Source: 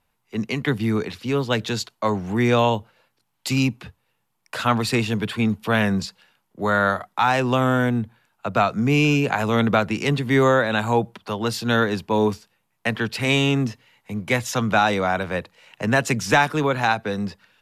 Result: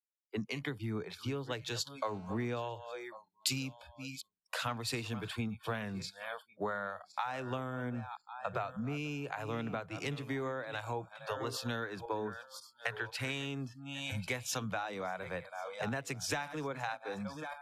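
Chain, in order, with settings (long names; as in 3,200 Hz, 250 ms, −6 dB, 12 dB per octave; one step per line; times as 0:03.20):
feedback delay that plays each chunk backwards 548 ms, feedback 42%, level −13.5 dB
0:11.83–0:13.47: dynamic equaliser 1,500 Hz, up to +8 dB, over −42 dBFS, Q 2.3
noise reduction from a noise print of the clip's start 28 dB
downward compressor 16 to 1, threshold −31 dBFS, peak gain reduction 19.5 dB
0:02.05–0:02.45: phone interference −53 dBFS
multiband upward and downward expander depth 70%
level −3 dB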